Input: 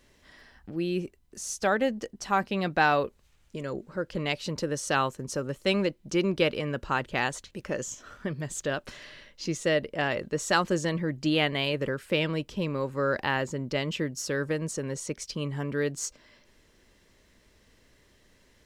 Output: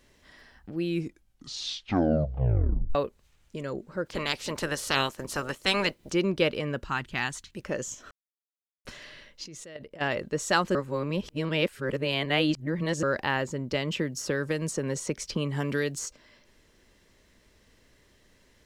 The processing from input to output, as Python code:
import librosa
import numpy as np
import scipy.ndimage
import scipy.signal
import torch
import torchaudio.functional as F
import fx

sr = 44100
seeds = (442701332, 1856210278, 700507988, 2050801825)

y = fx.spec_clip(x, sr, under_db=19, at=(4.05, 6.11), fade=0.02)
y = fx.peak_eq(y, sr, hz=530.0, db=-14.5, octaves=0.92, at=(6.84, 7.57))
y = fx.level_steps(y, sr, step_db=22, at=(9.43, 10.0), fade=0.02)
y = fx.band_squash(y, sr, depth_pct=100, at=(13.73, 16.07))
y = fx.edit(y, sr, fx.tape_stop(start_s=0.82, length_s=2.13),
    fx.silence(start_s=8.11, length_s=0.74),
    fx.reverse_span(start_s=10.75, length_s=2.28), tone=tone)